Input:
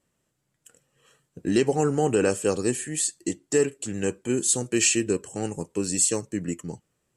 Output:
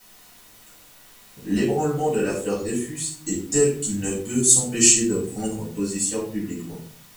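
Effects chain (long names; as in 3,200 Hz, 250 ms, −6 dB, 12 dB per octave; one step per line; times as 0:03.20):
reverb reduction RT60 1.3 s
0:03.17–0:05.55: bass and treble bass +5 dB, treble +12 dB
bit-depth reduction 8 bits, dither triangular
rectangular room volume 460 cubic metres, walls furnished, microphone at 7.4 metres
level −10.5 dB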